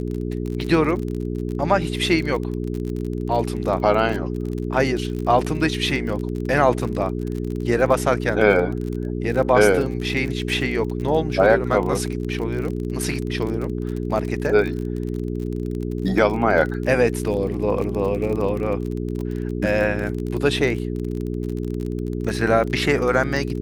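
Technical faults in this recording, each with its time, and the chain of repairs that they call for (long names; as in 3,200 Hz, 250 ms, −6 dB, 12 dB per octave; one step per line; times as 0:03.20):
surface crackle 36 per second −27 dBFS
mains hum 60 Hz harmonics 7 −26 dBFS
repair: click removal
hum removal 60 Hz, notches 7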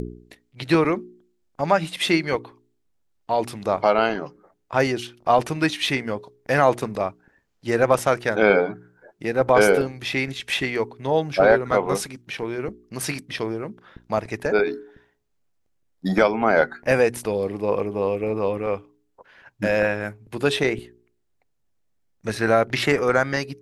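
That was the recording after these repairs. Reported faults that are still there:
none of them is left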